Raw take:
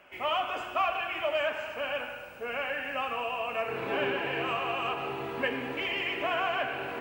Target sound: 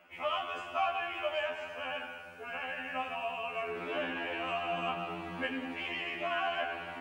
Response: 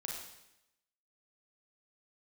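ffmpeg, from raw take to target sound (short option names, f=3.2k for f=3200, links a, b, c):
-filter_complex "[0:a]asettb=1/sr,asplit=3[a][b][c];[a]atrim=end=4.734[d];[b]atrim=start=4.73:end=5.37,asetpts=PTS-STARTPTS,afade=t=in:d=0.004:c=qsin,afade=t=out:st=0.636:d=0.004:c=qsin,equalizer=f=180:w=1.5:g=12.5[e];[c]atrim=start=5.366[f];[d][e]acrossfade=d=0.004:c1=hsin:c2=qsin[g];[g][f]acrossfade=d=0.004:c1=qsin:c2=hsin,afftfilt=real='re*2*eq(mod(b,4),0)':imag='im*2*eq(mod(b,4),0)':win_size=2048:overlap=0.75,volume=-2dB"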